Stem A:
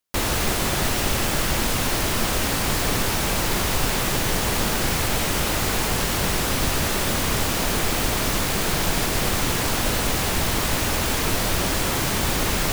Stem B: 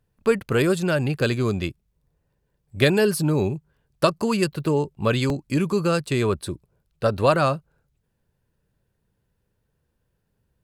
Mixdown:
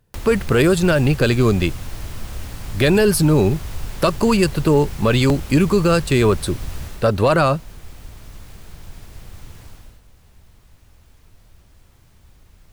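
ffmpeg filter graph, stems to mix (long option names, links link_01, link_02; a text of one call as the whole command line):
ffmpeg -i stem1.wav -i stem2.wav -filter_complex "[0:a]acrossover=split=120[link_01][link_02];[link_02]acompressor=threshold=-36dB:ratio=10[link_03];[link_01][link_03]amix=inputs=2:normalize=0,volume=-1dB,afade=type=out:start_time=6.83:duration=0.27:silence=0.375837,afade=type=out:start_time=9.63:duration=0.38:silence=0.251189[link_04];[1:a]acontrast=33,alimiter=limit=-9.5dB:level=0:latency=1,volume=2.5dB[link_05];[link_04][link_05]amix=inputs=2:normalize=0" out.wav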